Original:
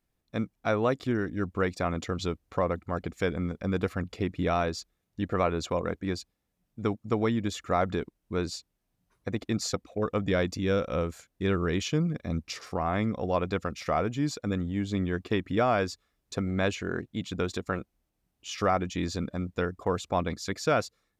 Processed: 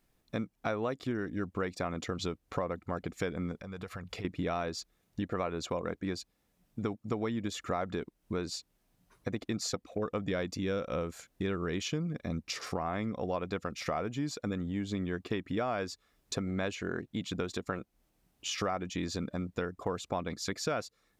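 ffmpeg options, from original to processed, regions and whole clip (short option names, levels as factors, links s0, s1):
-filter_complex "[0:a]asettb=1/sr,asplit=3[s0][s1][s2];[s0]atrim=end=3.604[s3];[s1]atrim=start=3.6:end=4.25,asetpts=PTS-STARTPTS,afade=t=in:d=0.004:c=qsin,afade=t=out:st=0.646:d=0.004:c=qsin,equalizer=f=290:t=o:w=0.92:g=-10,acompressor=threshold=0.00794:ratio=8:attack=3.2:release=140:knee=1:detection=peak[s4];[s2]atrim=start=4.246[s5];[s3][s4]acrossfade=d=0.004:c1=hsin:c2=qsin[s6];[s6][s5]acrossfade=d=0.004:c1=qsin:c2=hsin,equalizer=f=74:t=o:w=1.3:g=-5,acompressor=threshold=0.00794:ratio=3,volume=2.24"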